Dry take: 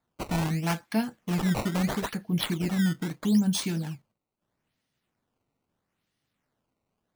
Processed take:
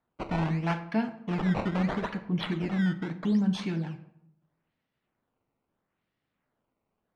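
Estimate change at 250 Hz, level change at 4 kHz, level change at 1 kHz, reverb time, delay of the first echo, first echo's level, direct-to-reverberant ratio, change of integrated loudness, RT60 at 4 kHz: -1.5 dB, -6.5 dB, 0.0 dB, 0.75 s, no echo, no echo, 11.0 dB, -1.5 dB, 0.50 s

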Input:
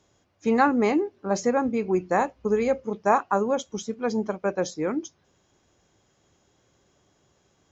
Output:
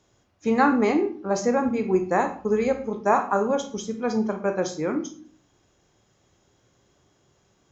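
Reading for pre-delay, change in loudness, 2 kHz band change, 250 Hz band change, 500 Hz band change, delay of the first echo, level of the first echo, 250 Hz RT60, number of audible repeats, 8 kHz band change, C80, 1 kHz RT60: 24 ms, +1.0 dB, +1.0 dB, +1.5 dB, +1.0 dB, no echo, no echo, 0.70 s, no echo, no reading, 15.0 dB, 0.45 s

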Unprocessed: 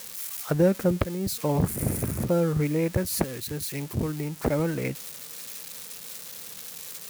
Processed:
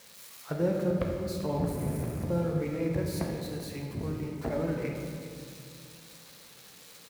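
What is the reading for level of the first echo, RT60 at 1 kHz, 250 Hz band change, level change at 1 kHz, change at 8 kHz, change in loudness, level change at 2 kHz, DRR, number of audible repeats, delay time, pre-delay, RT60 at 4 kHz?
-15.0 dB, 2.1 s, -5.0 dB, -5.0 dB, -13.0 dB, -4.5 dB, -6.5 dB, -0.5 dB, 1, 388 ms, 8 ms, 1.3 s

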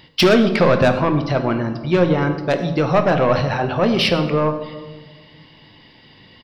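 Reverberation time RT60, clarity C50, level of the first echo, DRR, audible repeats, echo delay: 1.4 s, 9.5 dB, -18.5 dB, 6.5 dB, 1, 105 ms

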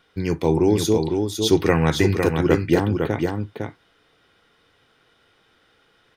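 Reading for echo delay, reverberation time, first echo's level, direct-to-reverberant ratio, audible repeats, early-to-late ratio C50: 505 ms, no reverb, -5.0 dB, no reverb, 1, no reverb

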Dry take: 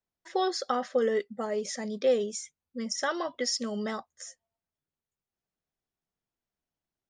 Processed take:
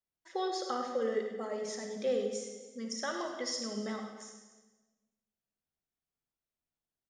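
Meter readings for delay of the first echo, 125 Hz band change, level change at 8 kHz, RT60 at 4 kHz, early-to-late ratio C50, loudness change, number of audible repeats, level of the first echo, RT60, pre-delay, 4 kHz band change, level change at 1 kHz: 101 ms, no reading, -5.5 dB, 1.1 s, 4.0 dB, -5.5 dB, 2, -11.0 dB, 1.3 s, 35 ms, -5.5 dB, -5.5 dB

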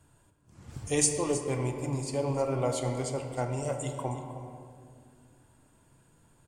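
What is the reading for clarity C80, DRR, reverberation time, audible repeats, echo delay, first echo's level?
6.0 dB, 4.0 dB, 2.3 s, 1, 315 ms, -13.5 dB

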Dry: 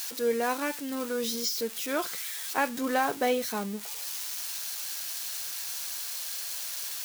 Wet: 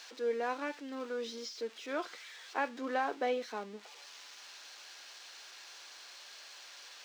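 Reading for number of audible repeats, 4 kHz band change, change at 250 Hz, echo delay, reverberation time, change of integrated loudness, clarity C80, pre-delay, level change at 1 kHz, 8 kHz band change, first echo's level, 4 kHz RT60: no echo, -11.0 dB, -10.0 dB, no echo, no reverb, -9.0 dB, no reverb, no reverb, -6.0 dB, -18.5 dB, no echo, no reverb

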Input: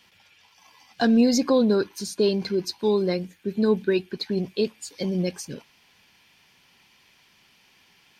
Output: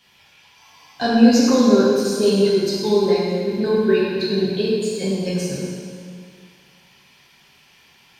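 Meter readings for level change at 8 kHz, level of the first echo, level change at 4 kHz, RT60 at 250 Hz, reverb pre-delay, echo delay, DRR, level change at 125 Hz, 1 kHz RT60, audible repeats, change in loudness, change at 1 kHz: +5.5 dB, no echo, +6.0 dB, 2.3 s, 3 ms, no echo, -7.5 dB, +5.5 dB, 2.1 s, no echo, +5.5 dB, +7.0 dB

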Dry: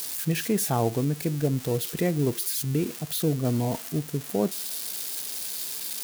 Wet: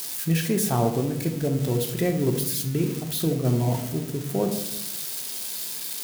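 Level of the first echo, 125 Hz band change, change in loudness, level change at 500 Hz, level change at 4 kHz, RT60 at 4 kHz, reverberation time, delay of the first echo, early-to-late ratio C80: no echo, +2.5 dB, +2.0 dB, +2.0 dB, +1.5 dB, 0.50 s, 0.90 s, no echo, 11.5 dB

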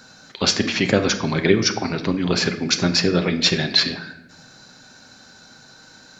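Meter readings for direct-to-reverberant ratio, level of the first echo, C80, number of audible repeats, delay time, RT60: 7.0 dB, no echo, 14.0 dB, no echo, no echo, 0.90 s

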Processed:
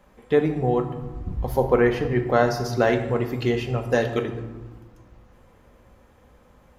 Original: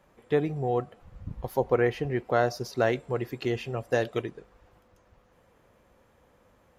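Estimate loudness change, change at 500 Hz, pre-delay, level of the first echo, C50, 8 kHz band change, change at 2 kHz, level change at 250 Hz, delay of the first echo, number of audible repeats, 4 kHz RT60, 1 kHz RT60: +5.5 dB, +5.5 dB, 4 ms, no echo, 9.0 dB, +5.0 dB, +5.5 dB, +7.5 dB, no echo, no echo, 0.65 s, 1.3 s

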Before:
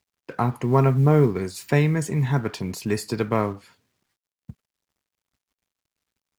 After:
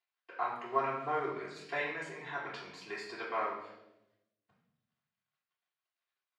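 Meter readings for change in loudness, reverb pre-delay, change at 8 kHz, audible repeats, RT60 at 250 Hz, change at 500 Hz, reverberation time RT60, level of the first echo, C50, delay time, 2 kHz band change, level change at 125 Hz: -15.0 dB, 3 ms, -22.0 dB, no echo, 1.3 s, -14.5 dB, 0.90 s, no echo, 4.0 dB, no echo, -5.5 dB, -34.0 dB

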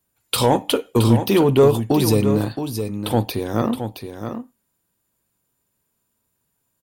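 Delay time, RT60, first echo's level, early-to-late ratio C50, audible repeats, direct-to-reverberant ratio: 670 ms, no reverb, -8.5 dB, no reverb, 1, no reverb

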